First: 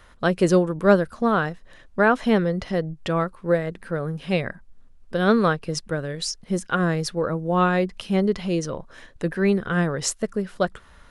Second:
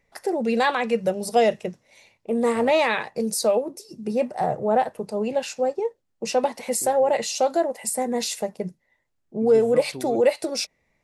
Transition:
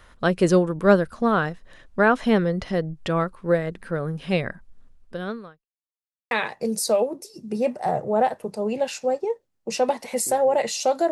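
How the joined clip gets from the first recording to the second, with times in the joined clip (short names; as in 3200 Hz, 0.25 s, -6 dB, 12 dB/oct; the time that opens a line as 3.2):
first
4.89–5.67 fade out quadratic
5.67–6.31 mute
6.31 switch to second from 2.86 s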